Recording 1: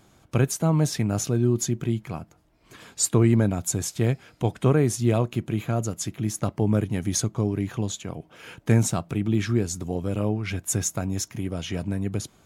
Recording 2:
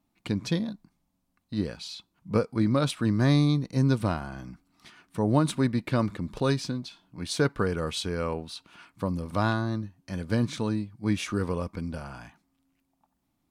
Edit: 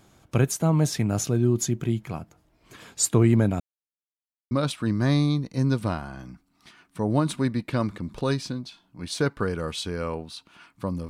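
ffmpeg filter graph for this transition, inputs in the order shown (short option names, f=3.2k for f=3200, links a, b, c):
-filter_complex "[0:a]apad=whole_dur=11.09,atrim=end=11.09,asplit=2[a][b];[a]atrim=end=3.6,asetpts=PTS-STARTPTS,afade=t=out:st=3.596:d=0.004:c=hsin[c];[b]atrim=start=3.6:end=4.51,asetpts=PTS-STARTPTS,volume=0[d];[1:a]atrim=start=2.7:end=9.28,asetpts=PTS-STARTPTS,afade=t=in:d=0.004:c=hsin[e];[c][d][e]concat=n=3:v=0:a=1"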